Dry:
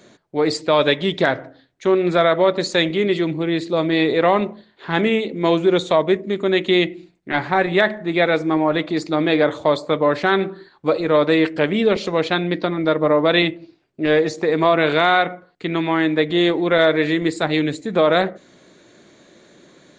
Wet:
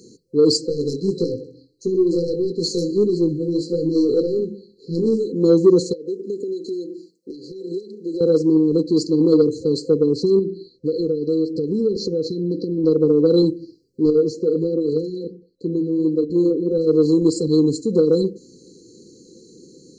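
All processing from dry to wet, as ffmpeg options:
-filter_complex "[0:a]asettb=1/sr,asplit=3[a][b][c];[a]atrim=end=0.664[d];[b]atrim=start=0.66:end=5.32,asetpts=PTS-STARTPTS,afade=t=in:d=0.004:c=qsin,afade=t=out:st=4.656:d=0.004:c=qsin,aecho=1:1:64|128|192|256|320:0.188|0.0998|0.0529|0.028|0.0149,atrim=end_sample=205506,flanger=delay=17:depth=5.9:speed=1.6,aeval=exprs='(tanh(2.51*val(0)+0.3)-tanh(0.3))/2.51':c=same[e];[c]atrim=start=5.316[f];[d][e]acrossfade=d=0.004:c1=hsin:c2=qsin[g];[g][f]acrossfade=d=0.004:c1=qsin:c2=hsin,asettb=1/sr,asplit=3[h][i][j];[h]atrim=end=5.934[k];[i]atrim=start=5.93:end=8.21,asetpts=PTS-STARTPTS,afade=t=in:d=0.004:c=qsin,afade=t=out:st=2.276:d=0.004:c=qsin,highpass=360,acompressor=threshold=-25dB:ratio=12:attack=3.2:release=140:knee=1:detection=peak[l];[j]atrim=start=8.206[m];[k][l]acrossfade=d=0.004:c1=hsin:c2=qsin[n];[n][m]acrossfade=d=0.004:c1=qsin:c2=hsin,asettb=1/sr,asplit=3[o][p][q];[o]atrim=end=10.394[r];[p]atrim=start=10.39:end=12.84,asetpts=PTS-STARTPTS,afade=t=in:d=0.004:c=qsin,afade=t=out:st=2.446:d=0.004:c=qsin,lowpass=5.5k,acompressor=threshold=-23dB:ratio=2.5:attack=3.2:release=140:knee=1:detection=peak[s];[q]atrim=start=12.836[t];[r][s]acrossfade=d=0.004:c1=hsin:c2=qsin[u];[u][t]acrossfade=d=0.004:c1=qsin:c2=hsin,asettb=1/sr,asplit=3[v][w][x];[v]atrim=end=14.104[y];[w]atrim=start=14.1:end=16.87,asetpts=PTS-STARTPTS,afade=t=in:d=0.004:c=qsin,afade=t=out:st=2.766:d=0.004:c=qsin,highshelf=f=3.3k:g=-8.5,flanger=delay=3.1:depth=7.1:regen=-63:speed=1.4:shape=sinusoidal[z];[x]atrim=start=16.866[aa];[y][z]acrossfade=d=0.004:c1=hsin:c2=qsin[ab];[ab][aa]acrossfade=d=0.004:c1=qsin:c2=hsin,afftfilt=real='re*(1-between(b*sr/4096,520,4000))':imag='im*(1-between(b*sr/4096,520,4000))':win_size=4096:overlap=0.75,lowshelf=f=270:g=-4,acontrast=65"

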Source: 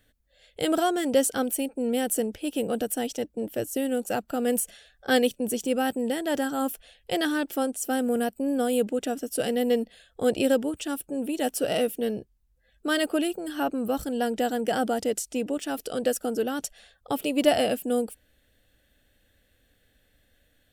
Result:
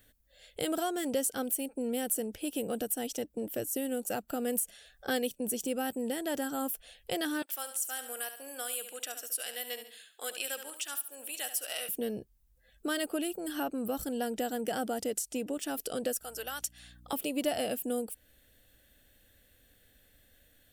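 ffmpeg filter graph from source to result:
-filter_complex "[0:a]asettb=1/sr,asplit=3[a][b][c];[a]atrim=end=7.424[d];[b]atrim=start=7.42:end=11.89,asetpts=PTS-STARTPTS,afade=t=in:d=0.004:c=qsin,afade=t=out:st=4.466:d=0.004:c=qsin,highpass=1.3k,aecho=1:1:70|140|210|280:0.282|0.101|0.0365|0.0131,atrim=end_sample=197127[e];[c]atrim=start=11.886[f];[d][e]acrossfade=d=0.004:c1=hsin:c2=qsin[g];[g][f]acrossfade=d=0.004:c1=qsin:c2=hsin,asettb=1/sr,asplit=3[h][i][j];[h]atrim=end=16.214[k];[i]atrim=start=16.21:end=17.13,asetpts=PTS-STARTPTS,afade=t=in:d=0.004:c=qsin,afade=t=out:st=0.916:d=0.004:c=qsin,highpass=1k,aeval=exprs='val(0)+0.00178*(sin(2*PI*60*n/s)+sin(2*PI*2*60*n/s)/2+sin(2*PI*3*60*n/s)/3+sin(2*PI*4*60*n/s)/4+sin(2*PI*5*60*n/s)/5)':c=same[l];[j]atrim=start=17.126[m];[k][l]acrossfade=d=0.004:c1=hsin:c2=qsin[n];[n][m]acrossfade=d=0.004:c1=qsin:c2=hsin,highshelf=f=8.4k:g=11,acompressor=threshold=-36dB:ratio=2"

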